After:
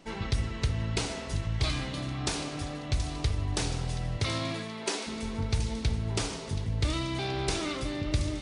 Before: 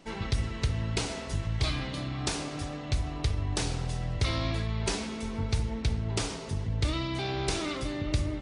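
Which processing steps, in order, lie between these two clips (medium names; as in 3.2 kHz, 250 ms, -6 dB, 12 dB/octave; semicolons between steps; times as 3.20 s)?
4.17–5.06 s: high-pass 75 Hz -> 320 Hz 24 dB/octave; on a send: feedback echo behind a high-pass 727 ms, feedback 59%, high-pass 2.6 kHz, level -10 dB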